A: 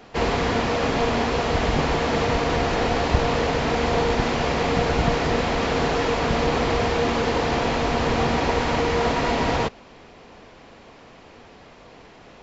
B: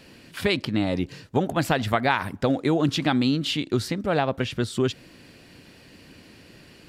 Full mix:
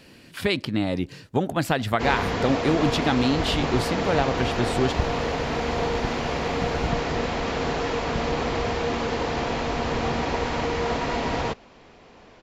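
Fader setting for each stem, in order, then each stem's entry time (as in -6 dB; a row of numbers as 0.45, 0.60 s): -4.0, -0.5 dB; 1.85, 0.00 s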